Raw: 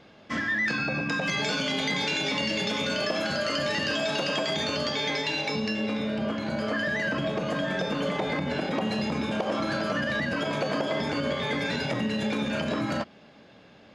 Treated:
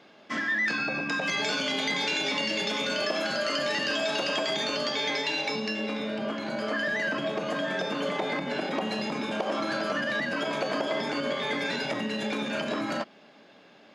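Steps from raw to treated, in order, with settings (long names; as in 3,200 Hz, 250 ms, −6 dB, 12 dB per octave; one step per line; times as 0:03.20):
high-pass filter 250 Hz 12 dB per octave
notch filter 500 Hz, Q 12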